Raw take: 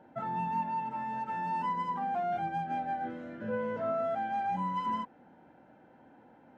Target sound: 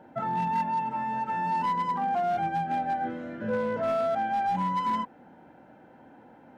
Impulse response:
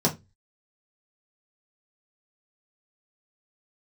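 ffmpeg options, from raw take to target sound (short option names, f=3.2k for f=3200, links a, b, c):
-af "asoftclip=type=hard:threshold=-28dB,volume=5.5dB"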